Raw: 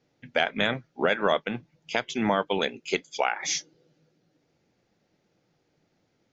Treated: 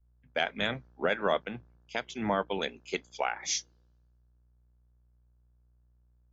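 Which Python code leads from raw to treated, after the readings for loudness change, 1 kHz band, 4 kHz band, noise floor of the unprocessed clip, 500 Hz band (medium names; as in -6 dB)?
-5.0 dB, -5.0 dB, -5.0 dB, -72 dBFS, -5.0 dB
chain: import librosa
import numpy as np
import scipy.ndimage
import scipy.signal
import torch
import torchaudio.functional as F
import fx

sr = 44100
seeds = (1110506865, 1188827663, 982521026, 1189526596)

y = fx.dmg_buzz(x, sr, base_hz=60.0, harmonics=29, level_db=-53.0, tilt_db=-6, odd_only=False)
y = fx.band_widen(y, sr, depth_pct=70)
y = y * 10.0 ** (-6.5 / 20.0)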